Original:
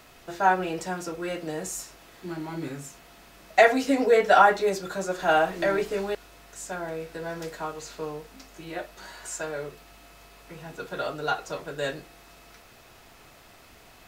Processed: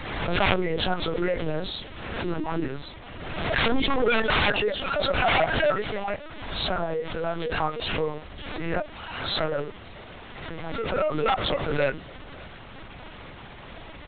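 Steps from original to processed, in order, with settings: knee-point frequency compression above 1.2 kHz 1.5:1; reverb removal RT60 1.2 s; 4.39–6.67 s: high-pass 540 Hz 24 dB/octave; wavefolder -23 dBFS; added noise pink -50 dBFS; delay 555 ms -23 dB; LPC vocoder at 8 kHz pitch kept; swell ahead of each attack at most 38 dB/s; trim +7 dB

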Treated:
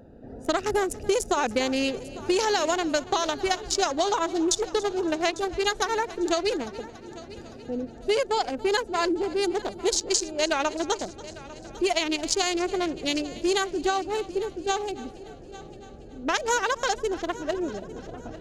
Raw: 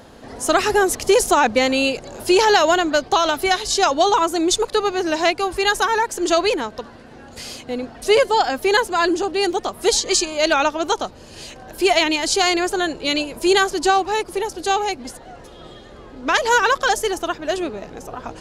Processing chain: local Wiener filter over 41 samples; dynamic bell 6.4 kHz, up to +7 dB, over -40 dBFS, Q 1.2; compression, threshold -18 dBFS, peak gain reduction 8 dB; multi-head delay 283 ms, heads first and third, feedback 50%, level -19 dB; trim -2.5 dB

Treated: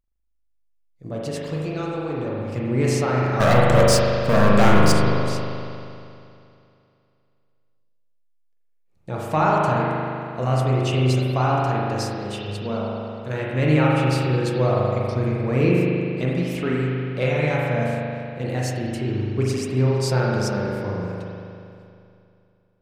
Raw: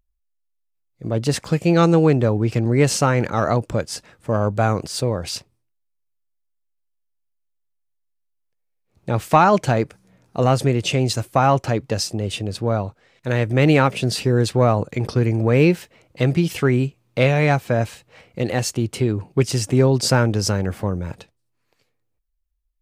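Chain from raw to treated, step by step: 1.24–2.55 s: compression, threshold -18 dBFS, peak gain reduction 7.5 dB; 3.40–4.92 s: waveshaping leveller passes 5; flange 0.24 Hz, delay 3.9 ms, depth 5.9 ms, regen -65%; spring tank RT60 2.6 s, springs 39 ms, chirp 65 ms, DRR -4.5 dB; trim -4.5 dB

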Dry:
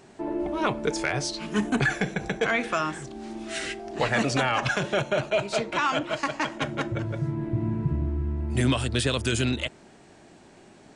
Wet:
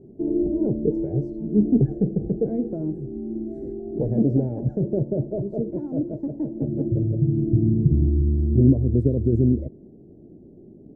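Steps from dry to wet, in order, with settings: inverse Chebyshev low-pass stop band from 1.1 kHz, stop band 50 dB; trim +8 dB

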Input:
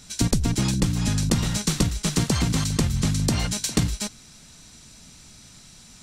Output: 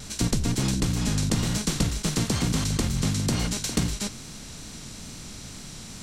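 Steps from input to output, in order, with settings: spectral levelling over time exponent 0.6; wow and flutter 27 cents; flange 1.1 Hz, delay 1.2 ms, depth 9.4 ms, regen -58%; trim -1 dB

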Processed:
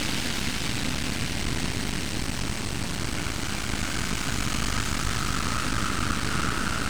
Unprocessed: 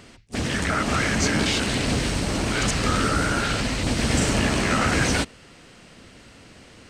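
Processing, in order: peaking EQ 490 Hz -14.5 dB 0.63 oct; Paulstretch 4.2×, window 1.00 s, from 1.59 s; half-wave rectifier

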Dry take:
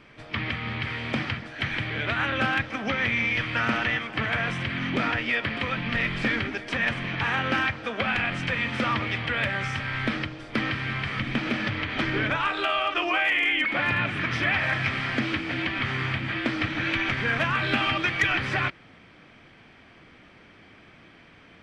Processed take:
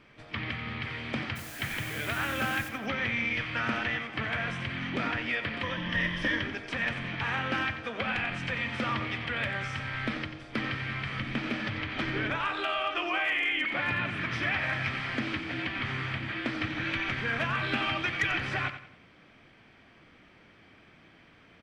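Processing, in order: 1.35–2.68 s: added noise white -41 dBFS; 5.63–6.42 s: rippled EQ curve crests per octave 1.2, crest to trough 11 dB; feedback delay 90 ms, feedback 36%, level -11 dB; trim -5.5 dB

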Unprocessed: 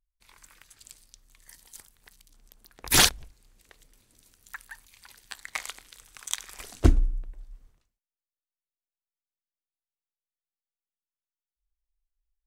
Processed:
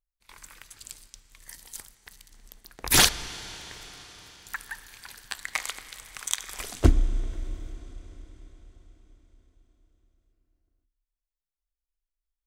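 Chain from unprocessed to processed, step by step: gate -58 dBFS, range -12 dB; in parallel at +2.5 dB: compression, threshold -34 dBFS, peak gain reduction 20.5 dB; on the sum: reverberation RT60 5.1 s, pre-delay 26 ms, DRR 13 dB; trim -1 dB

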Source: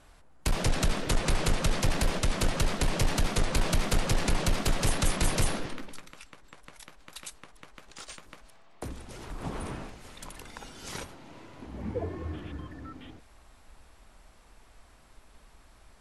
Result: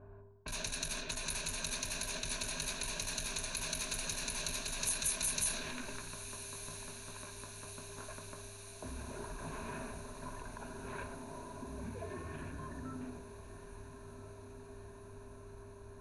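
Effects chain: level-controlled noise filter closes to 1.1 kHz, open at -25 dBFS; mains buzz 100 Hz, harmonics 4, -59 dBFS -4 dB/octave; level-controlled noise filter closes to 890 Hz, open at -20 dBFS; rippled EQ curve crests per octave 1.5, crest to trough 12 dB; reverse; compression 6:1, threshold -37 dBFS, peak gain reduction 16.5 dB; reverse; peak limiter -35.5 dBFS, peak gain reduction 8 dB; pre-emphasis filter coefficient 0.9; echo that smears into a reverb 1328 ms, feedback 68%, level -12.5 dB; on a send at -10 dB: reverberation RT60 0.55 s, pre-delay 3 ms; on the sum: endings held to a fixed fall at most 120 dB/s; trim +18 dB

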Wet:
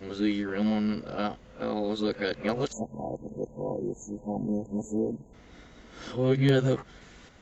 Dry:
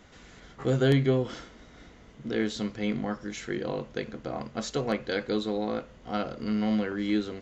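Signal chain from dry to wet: reverse the whole clip; spectral selection erased 2.72–5.34 s, 1–6.3 kHz

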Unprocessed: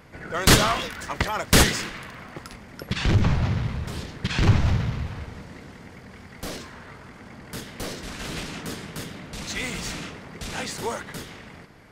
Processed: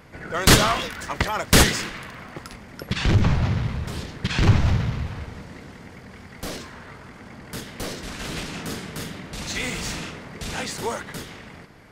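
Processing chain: 8.50–10.55 s: doubling 44 ms -7 dB; trim +1.5 dB

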